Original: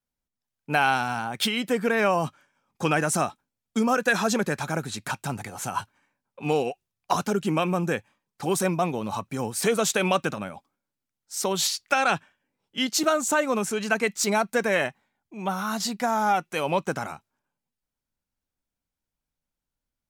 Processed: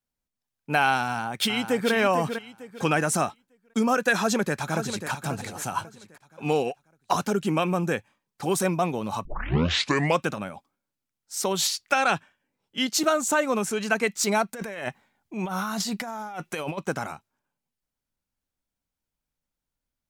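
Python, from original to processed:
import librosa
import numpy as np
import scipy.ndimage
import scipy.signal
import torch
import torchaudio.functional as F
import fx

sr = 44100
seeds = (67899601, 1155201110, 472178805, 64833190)

y = fx.echo_throw(x, sr, start_s=1.04, length_s=0.89, ms=450, feedback_pct=30, wet_db=-7.5)
y = fx.echo_throw(y, sr, start_s=4.17, length_s=0.92, ms=540, feedback_pct=35, wet_db=-9.0)
y = fx.over_compress(y, sr, threshold_db=-32.0, ratio=-1.0, at=(14.53, 16.77), fade=0.02)
y = fx.edit(y, sr, fx.tape_start(start_s=9.25, length_s=0.99), tone=tone)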